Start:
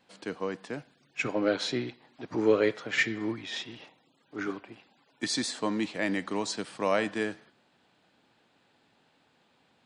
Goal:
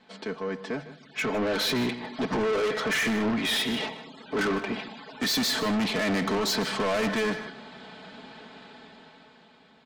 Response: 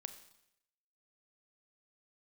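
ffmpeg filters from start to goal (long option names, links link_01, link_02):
-filter_complex "[0:a]lowpass=4800,bandreject=frequency=2700:width=12,aecho=1:1:4.6:0.72,bandreject=frequency=76.25:width_type=h:width=4,bandreject=frequency=152.5:width_type=h:width=4,asplit=2[link_01][link_02];[link_02]acompressor=threshold=-40dB:ratio=6,volume=2dB[link_03];[link_01][link_03]amix=inputs=2:normalize=0,alimiter=limit=-21.5dB:level=0:latency=1:release=39,dynaudnorm=framelen=250:gausssize=11:maxgain=13.5dB,asoftclip=type=tanh:threshold=-24dB,asplit=2[link_04][link_05];[link_05]aecho=0:1:155:0.178[link_06];[link_04][link_06]amix=inputs=2:normalize=0"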